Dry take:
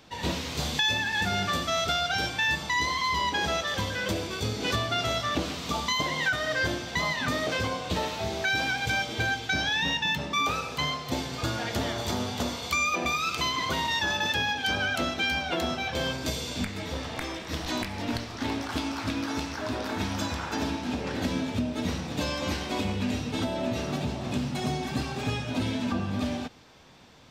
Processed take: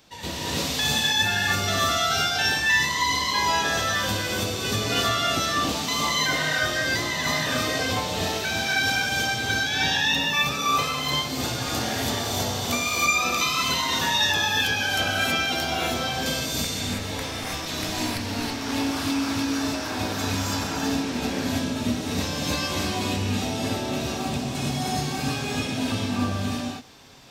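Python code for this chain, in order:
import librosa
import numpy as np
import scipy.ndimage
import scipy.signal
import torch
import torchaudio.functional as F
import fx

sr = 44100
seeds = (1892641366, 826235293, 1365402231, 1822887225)

y = fx.high_shelf(x, sr, hz=5000.0, db=10.5)
y = fx.rev_gated(y, sr, seeds[0], gate_ms=350, shape='rising', drr_db=-6.5)
y = y * 10.0 ** (-4.5 / 20.0)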